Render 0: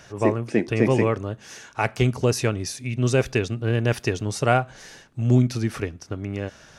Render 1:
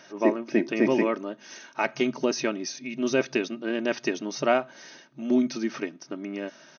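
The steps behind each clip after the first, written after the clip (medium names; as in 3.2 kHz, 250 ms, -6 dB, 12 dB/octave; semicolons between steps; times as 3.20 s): FFT band-pass 130–6500 Hz; comb 3.2 ms, depth 54%; trim -3 dB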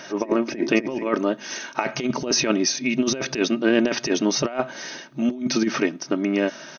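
compressor with a negative ratio -28 dBFS, ratio -0.5; trim +8 dB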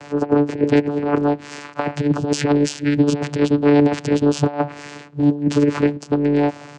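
vocoder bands 8, saw 145 Hz; trim +6 dB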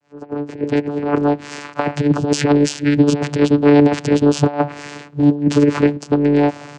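fade-in on the opening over 1.41 s; trim +3 dB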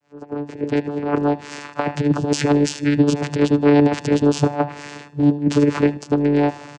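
feedback delay 77 ms, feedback 34%, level -19 dB; trim -2.5 dB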